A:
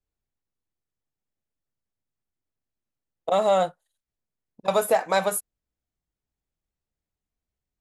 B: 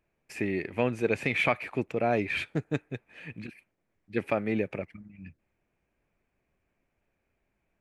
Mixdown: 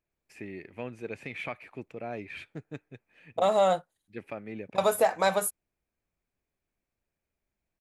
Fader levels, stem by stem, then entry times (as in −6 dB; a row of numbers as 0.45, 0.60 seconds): −2.5, −11.0 decibels; 0.10, 0.00 seconds